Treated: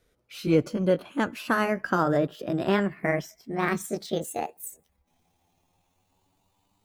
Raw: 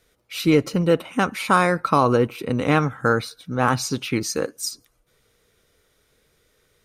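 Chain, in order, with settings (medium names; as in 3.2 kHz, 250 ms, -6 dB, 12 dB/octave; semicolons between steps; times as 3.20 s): pitch bend over the whole clip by +12 st starting unshifted; tilt shelf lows +3.5 dB; trim -6 dB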